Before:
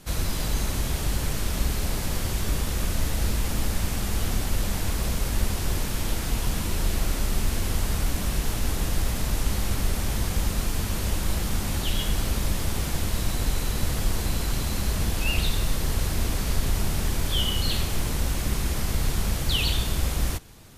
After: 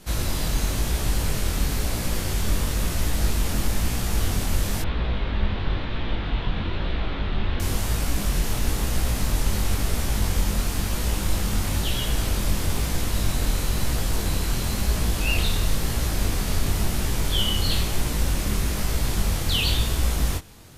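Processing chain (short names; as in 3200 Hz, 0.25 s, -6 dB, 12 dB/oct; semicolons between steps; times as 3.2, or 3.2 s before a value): 4.82–7.6 elliptic low-pass 3700 Hz, stop band 80 dB; chorus 1 Hz, delay 16.5 ms, depth 7.8 ms; gain +5 dB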